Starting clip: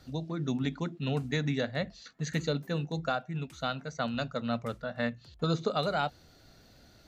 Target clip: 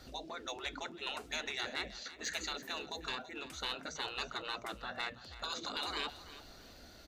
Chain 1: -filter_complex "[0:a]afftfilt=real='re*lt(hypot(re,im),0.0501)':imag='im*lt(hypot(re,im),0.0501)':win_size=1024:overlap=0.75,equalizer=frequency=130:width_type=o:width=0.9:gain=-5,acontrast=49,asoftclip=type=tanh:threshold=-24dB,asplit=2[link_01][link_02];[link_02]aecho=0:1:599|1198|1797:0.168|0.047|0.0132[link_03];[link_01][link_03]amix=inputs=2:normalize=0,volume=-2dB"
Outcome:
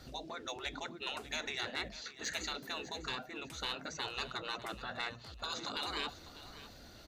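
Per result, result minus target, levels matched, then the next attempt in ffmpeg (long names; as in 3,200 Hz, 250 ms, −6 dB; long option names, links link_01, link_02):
echo 269 ms late; 125 Hz band +4.0 dB
-filter_complex "[0:a]afftfilt=real='re*lt(hypot(re,im),0.0501)':imag='im*lt(hypot(re,im),0.0501)':win_size=1024:overlap=0.75,equalizer=frequency=130:width_type=o:width=0.9:gain=-5,acontrast=49,asoftclip=type=tanh:threshold=-24dB,asplit=2[link_01][link_02];[link_02]aecho=0:1:330|660|990:0.168|0.047|0.0132[link_03];[link_01][link_03]amix=inputs=2:normalize=0,volume=-2dB"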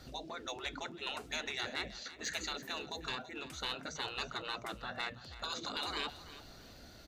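125 Hz band +3.5 dB
-filter_complex "[0:a]afftfilt=real='re*lt(hypot(re,im),0.0501)':imag='im*lt(hypot(re,im),0.0501)':win_size=1024:overlap=0.75,equalizer=frequency=130:width_type=o:width=0.9:gain=-12,acontrast=49,asoftclip=type=tanh:threshold=-24dB,asplit=2[link_01][link_02];[link_02]aecho=0:1:330|660|990:0.168|0.047|0.0132[link_03];[link_01][link_03]amix=inputs=2:normalize=0,volume=-2dB"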